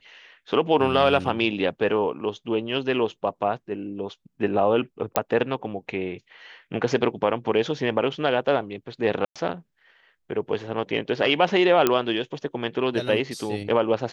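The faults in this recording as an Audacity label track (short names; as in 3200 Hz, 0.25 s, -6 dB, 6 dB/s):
5.160000	5.160000	pop -4 dBFS
9.250000	9.360000	gap 0.106 s
11.870000	11.870000	pop -5 dBFS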